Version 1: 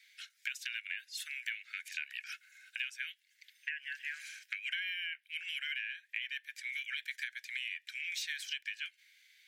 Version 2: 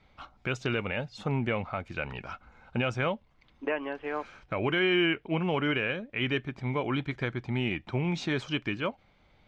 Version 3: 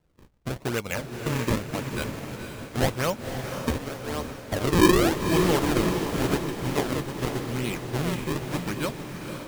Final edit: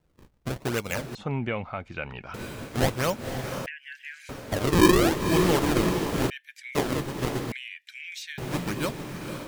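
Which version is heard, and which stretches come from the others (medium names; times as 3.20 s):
3
1.15–2.34 s: from 2
3.66–4.29 s: from 1
6.30–6.75 s: from 1
7.52–8.38 s: from 1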